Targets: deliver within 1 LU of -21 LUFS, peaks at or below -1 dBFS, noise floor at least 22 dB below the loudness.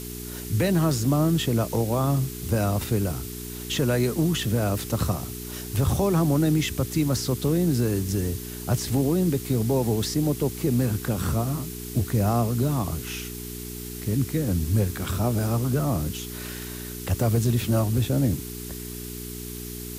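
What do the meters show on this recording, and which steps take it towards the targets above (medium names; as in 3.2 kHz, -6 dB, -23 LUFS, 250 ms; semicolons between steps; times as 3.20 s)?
hum 60 Hz; highest harmonic 420 Hz; hum level -35 dBFS; noise floor -36 dBFS; noise floor target -48 dBFS; loudness -25.5 LUFS; peak level -11.5 dBFS; loudness target -21.0 LUFS
-> de-hum 60 Hz, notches 7; noise print and reduce 12 dB; trim +4.5 dB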